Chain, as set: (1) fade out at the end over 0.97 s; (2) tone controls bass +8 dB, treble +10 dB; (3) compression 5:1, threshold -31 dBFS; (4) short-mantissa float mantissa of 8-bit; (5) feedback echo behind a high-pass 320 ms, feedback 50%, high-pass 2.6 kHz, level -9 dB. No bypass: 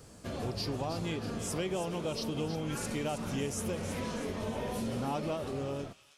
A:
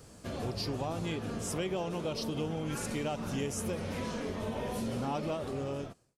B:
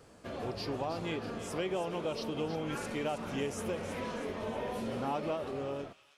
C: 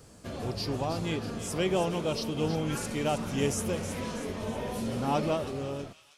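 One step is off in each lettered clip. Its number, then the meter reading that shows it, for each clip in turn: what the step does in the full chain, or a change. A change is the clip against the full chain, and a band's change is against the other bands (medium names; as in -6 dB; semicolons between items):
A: 5, echo-to-direct -15.0 dB to none; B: 2, 8 kHz band -6.5 dB; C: 3, mean gain reduction 3.0 dB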